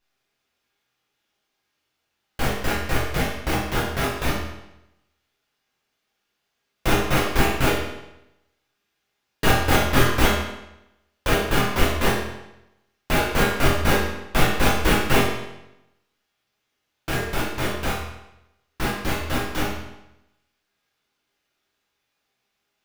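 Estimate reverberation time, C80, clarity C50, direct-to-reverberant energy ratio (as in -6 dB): 0.90 s, 4.5 dB, 1.5 dB, -8.0 dB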